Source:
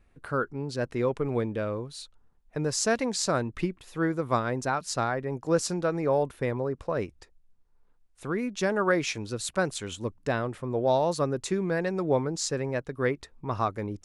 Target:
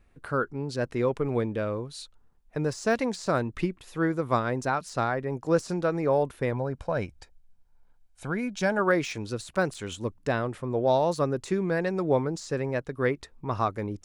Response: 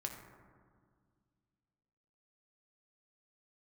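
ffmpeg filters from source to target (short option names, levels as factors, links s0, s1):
-filter_complex "[0:a]deesser=0.85,asettb=1/sr,asplit=3[s0][s1][s2];[s0]atrim=end=6.534[s3];[s1]atrim=start=6.53:end=8.79,asetpts=PTS-STARTPTS,afade=t=in:d=0.004:c=qsin,afade=t=out:st=2.256:d=0.004:c=qsin,aecho=1:1:1.3:0.49,atrim=end_sample=99666[s4];[s2]atrim=start=8.786[s5];[s3][s4]acrossfade=d=0.004:c1=hsin:c2=qsin[s6];[s6][s5]acrossfade=d=0.004:c1=qsin:c2=hsin,volume=1.12"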